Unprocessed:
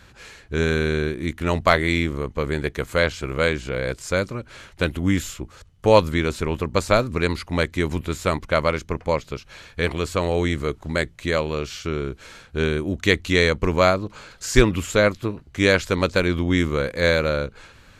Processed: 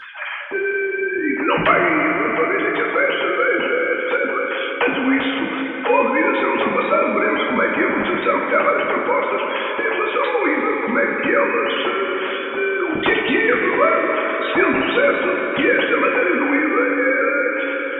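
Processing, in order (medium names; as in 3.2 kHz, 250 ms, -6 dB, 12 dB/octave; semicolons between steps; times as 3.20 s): formants replaced by sine waves; in parallel at +0.5 dB: compression, threshold -31 dBFS, peak gain reduction 21 dB; on the sum: two-slope reverb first 0.27 s, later 4 s, from -18 dB, DRR -6 dB; spectrum-flattening compressor 2:1; trim -7 dB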